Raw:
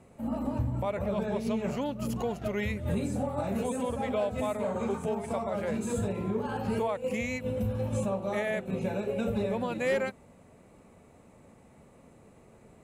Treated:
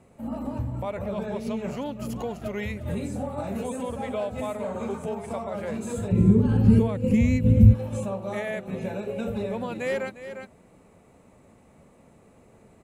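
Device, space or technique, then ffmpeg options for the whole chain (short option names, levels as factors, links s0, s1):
ducked delay: -filter_complex "[0:a]asplit=3[s0][s1][s2];[s1]adelay=353,volume=0.501[s3];[s2]apad=whole_len=581736[s4];[s3][s4]sidechaincompress=threshold=0.00708:ratio=3:attack=16:release=344[s5];[s0][s5]amix=inputs=2:normalize=0,asplit=3[s6][s7][s8];[s6]afade=t=out:st=6.11:d=0.02[s9];[s7]asubboost=boost=11.5:cutoff=230,afade=t=in:st=6.11:d=0.02,afade=t=out:st=7.73:d=0.02[s10];[s8]afade=t=in:st=7.73:d=0.02[s11];[s9][s10][s11]amix=inputs=3:normalize=0"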